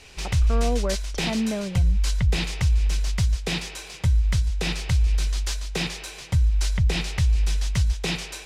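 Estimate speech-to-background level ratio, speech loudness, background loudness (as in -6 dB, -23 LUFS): -4.0 dB, -29.0 LUFS, -25.0 LUFS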